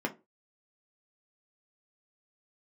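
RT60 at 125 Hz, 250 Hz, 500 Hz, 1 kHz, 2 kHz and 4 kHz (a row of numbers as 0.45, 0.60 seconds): 0.25, 0.30, 0.30, 0.25, 0.20, 0.15 seconds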